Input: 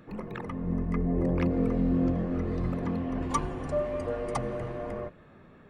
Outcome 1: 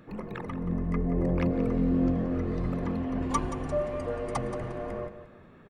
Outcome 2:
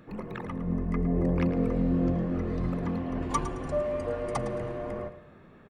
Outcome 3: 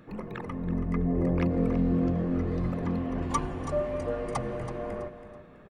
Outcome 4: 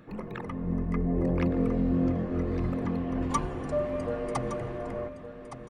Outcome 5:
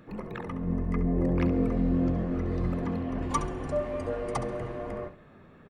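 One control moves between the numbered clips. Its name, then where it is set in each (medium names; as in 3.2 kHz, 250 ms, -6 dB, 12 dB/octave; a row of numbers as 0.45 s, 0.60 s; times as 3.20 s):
feedback delay, time: 177 ms, 109 ms, 328 ms, 1165 ms, 68 ms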